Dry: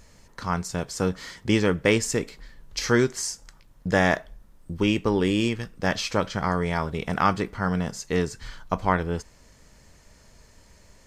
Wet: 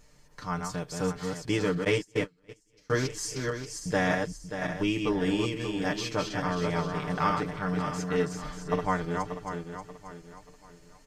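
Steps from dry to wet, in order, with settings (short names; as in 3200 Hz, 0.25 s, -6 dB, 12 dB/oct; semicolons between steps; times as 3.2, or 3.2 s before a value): regenerating reverse delay 0.292 s, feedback 59%, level -4.5 dB; 1.84–2.9 gate -20 dBFS, range -29 dB; comb 6.7 ms, depth 76%; gain -8 dB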